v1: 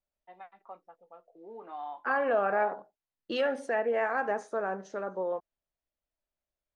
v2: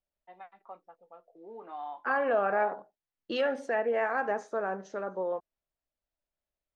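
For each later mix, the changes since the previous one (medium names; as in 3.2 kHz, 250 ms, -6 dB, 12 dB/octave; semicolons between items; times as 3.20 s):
master: add peaking EQ 9.6 kHz -12.5 dB 0.27 oct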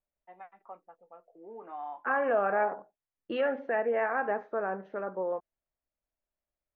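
master: add low-pass 2.6 kHz 24 dB/octave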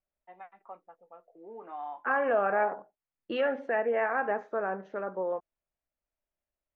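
master: remove distance through air 160 m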